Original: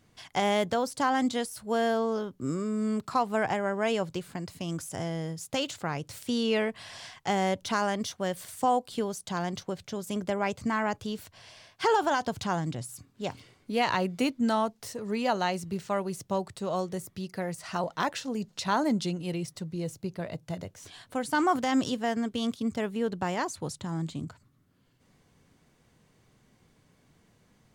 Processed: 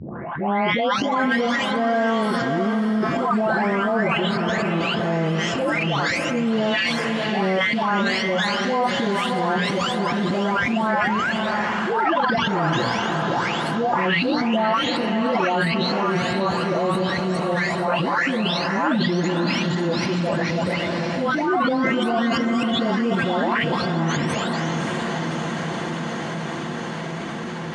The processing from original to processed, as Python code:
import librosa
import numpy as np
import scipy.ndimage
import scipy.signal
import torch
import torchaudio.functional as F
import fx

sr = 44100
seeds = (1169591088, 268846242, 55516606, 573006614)

p1 = fx.spec_delay(x, sr, highs='late', ms=775)
p2 = fx.hum_notches(p1, sr, base_hz=60, count=5)
p3 = fx.transient(p2, sr, attack_db=-11, sustain_db=11)
p4 = fx.spec_paint(p3, sr, seeds[0], shape='rise', start_s=10.93, length_s=0.39, low_hz=500.0, high_hz=1800.0, level_db=-37.0)
p5 = np.clip(10.0 ** (25.5 / 20.0) * p4, -1.0, 1.0) / 10.0 ** (25.5 / 20.0)
p6 = p4 + F.gain(torch.from_numpy(p5), -12.0).numpy()
p7 = fx.bandpass_edges(p6, sr, low_hz=150.0, high_hz=2900.0)
p8 = p7 + fx.echo_diffused(p7, sr, ms=590, feedback_pct=59, wet_db=-9.0, dry=0)
p9 = fx.env_flatten(p8, sr, amount_pct=70)
y = F.gain(torch.from_numpy(p9), 4.0).numpy()